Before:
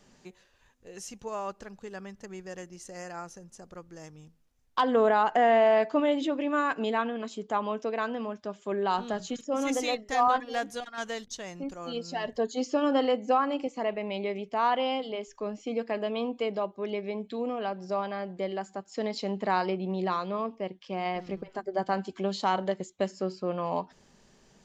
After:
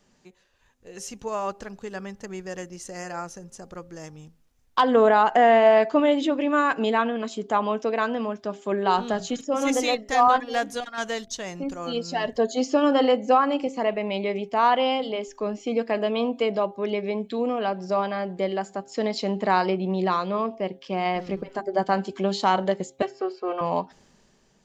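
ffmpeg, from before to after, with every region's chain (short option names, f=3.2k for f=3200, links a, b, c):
-filter_complex "[0:a]asettb=1/sr,asplit=3[a][b][c];[a]atrim=end=23.024[d];[b]atrim=start=23.02:end=23.61,asetpts=PTS-STARTPTS,afade=t=in:d=0.004:c=qsin,afade=t=out:st=0.586:d=0.004:c=qsin,highpass=480,aecho=1:1:2.6:0.93,atrim=end_sample=26019,adynamicsmooth=sensitivity=2:basefreq=2.9k[e];[c]atrim=start=23.606[f];[d][e]acrossfade=d=0.004:c1=hsin:c2=qsin[g];[g][f]acrossfade=d=0.004:c1=qsin:c2=hsin,bandreject=f=133.9:t=h:w=4,bandreject=f=267.8:t=h:w=4,bandreject=f=401.7:t=h:w=4,bandreject=f=535.6:t=h:w=4,bandreject=f=669.5:t=h:w=4,bandreject=f=803.4:t=h:w=4,dynaudnorm=f=190:g=9:m=10dB,volume=-3.5dB"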